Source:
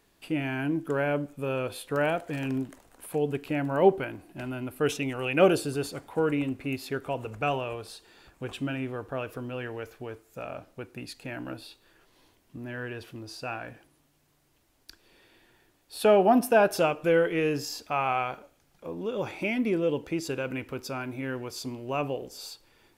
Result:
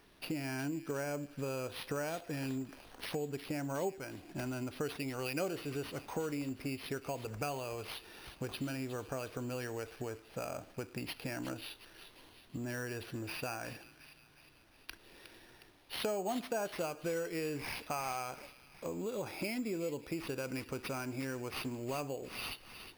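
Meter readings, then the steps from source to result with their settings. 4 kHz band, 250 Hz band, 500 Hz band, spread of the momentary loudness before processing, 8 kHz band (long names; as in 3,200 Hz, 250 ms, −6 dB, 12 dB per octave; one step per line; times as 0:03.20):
−5.0 dB, −9.5 dB, −12.0 dB, 18 LU, −4.0 dB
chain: downward compressor 4 to 1, threshold −40 dBFS, peak gain reduction 21 dB
on a send: delay with a high-pass on its return 362 ms, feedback 56%, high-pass 2,900 Hz, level −9.5 dB
on the sum: bad sample-rate conversion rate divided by 6×, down none, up hold
level +2.5 dB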